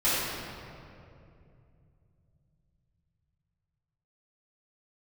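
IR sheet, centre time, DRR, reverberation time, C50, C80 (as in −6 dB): 152 ms, −15.0 dB, 2.6 s, −4.0 dB, −1.5 dB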